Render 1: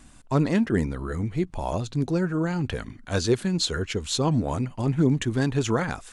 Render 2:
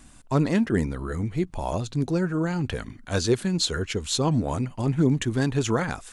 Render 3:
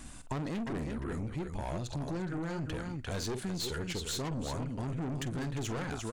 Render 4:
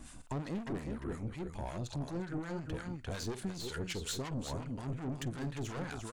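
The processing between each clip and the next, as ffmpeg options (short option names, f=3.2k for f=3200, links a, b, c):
-af "highshelf=f=8.7k:g=4.5"
-af "aecho=1:1:48|349:0.211|0.355,aeval=exprs='(tanh(20*val(0)+0.35)-tanh(0.35))/20':c=same,acompressor=threshold=-40dB:ratio=3,volume=3.5dB"
-filter_complex "[0:a]acrossover=split=940[a][b];[a]aeval=exprs='val(0)*(1-0.7/2+0.7/2*cos(2*PI*5.5*n/s))':c=same[c];[b]aeval=exprs='val(0)*(1-0.7/2-0.7/2*cos(2*PI*5.5*n/s))':c=same[d];[c][d]amix=inputs=2:normalize=0"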